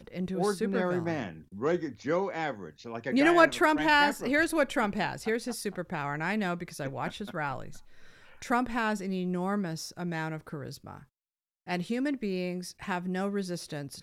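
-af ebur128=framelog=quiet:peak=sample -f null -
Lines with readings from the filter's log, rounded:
Integrated loudness:
  I:         -29.7 LUFS
  Threshold: -40.3 LUFS
Loudness range:
  LRA:         9.1 LU
  Threshold: -50.0 LUFS
  LRA low:   -35.1 LUFS
  LRA high:  -26.0 LUFS
Sample peak:
  Peak:       -9.8 dBFS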